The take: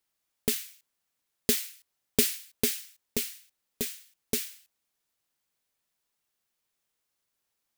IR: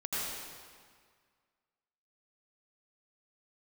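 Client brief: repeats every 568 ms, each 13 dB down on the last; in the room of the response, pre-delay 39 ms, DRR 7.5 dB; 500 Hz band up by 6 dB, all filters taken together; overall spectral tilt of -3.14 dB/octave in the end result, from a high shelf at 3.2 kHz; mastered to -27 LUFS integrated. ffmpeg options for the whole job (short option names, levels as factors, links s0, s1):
-filter_complex "[0:a]equalizer=f=500:t=o:g=7.5,highshelf=f=3200:g=-7,aecho=1:1:568|1136|1704:0.224|0.0493|0.0108,asplit=2[s0][s1];[1:a]atrim=start_sample=2205,adelay=39[s2];[s1][s2]afir=irnorm=-1:irlink=0,volume=0.224[s3];[s0][s3]amix=inputs=2:normalize=0,volume=2"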